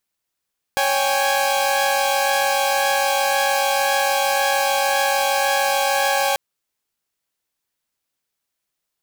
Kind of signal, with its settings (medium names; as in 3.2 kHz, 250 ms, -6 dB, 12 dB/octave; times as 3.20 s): chord C#5/G5/G#5 saw, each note -19 dBFS 5.59 s